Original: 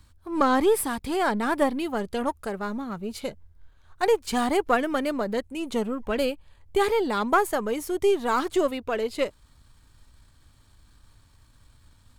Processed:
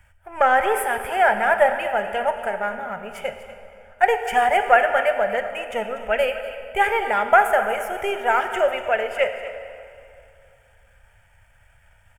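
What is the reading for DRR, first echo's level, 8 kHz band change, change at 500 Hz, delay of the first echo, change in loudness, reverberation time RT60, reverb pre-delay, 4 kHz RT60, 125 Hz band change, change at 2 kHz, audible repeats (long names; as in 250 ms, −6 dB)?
6.5 dB, −15.0 dB, −2.5 dB, +3.5 dB, 243 ms, +5.0 dB, 2.5 s, 17 ms, 2.0 s, can't be measured, +10.5 dB, 1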